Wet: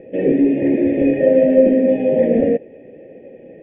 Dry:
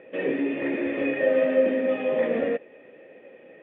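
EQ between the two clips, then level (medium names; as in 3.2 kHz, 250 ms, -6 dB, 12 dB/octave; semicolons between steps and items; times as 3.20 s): Butterworth band-stop 1.2 kHz, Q 1.1; distance through air 180 m; tilt EQ -4 dB/octave; +5.5 dB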